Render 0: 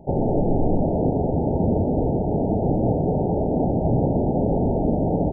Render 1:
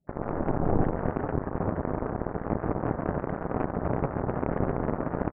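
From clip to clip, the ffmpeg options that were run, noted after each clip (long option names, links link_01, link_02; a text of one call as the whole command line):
ffmpeg -i in.wav -af "afftdn=noise_reduction=20:noise_floor=-35,aecho=1:1:140|322|558.6|866.2|1266:0.631|0.398|0.251|0.158|0.1,aeval=exprs='0.668*(cos(1*acos(clip(val(0)/0.668,-1,1)))-cos(1*PI/2))+0.106*(cos(7*acos(clip(val(0)/0.668,-1,1)))-cos(7*PI/2))':channel_layout=same,volume=-6.5dB" out.wav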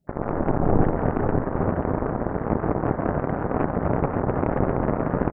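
ffmpeg -i in.wav -af "aecho=1:1:534:0.422,volume=5dB" out.wav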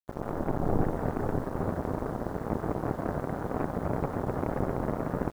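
ffmpeg -i in.wav -af "acrusher=bits=7:mix=0:aa=0.000001,volume=-7.5dB" out.wav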